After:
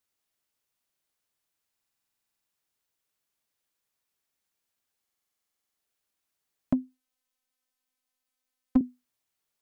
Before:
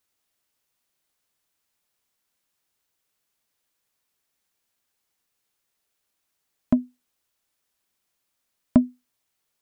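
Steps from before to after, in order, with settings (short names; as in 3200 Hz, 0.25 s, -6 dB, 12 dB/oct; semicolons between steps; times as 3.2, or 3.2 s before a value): 6.73–8.81 robotiser 256 Hz; stuck buffer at 1.73/5.02, samples 2048, times 15; gain -5.5 dB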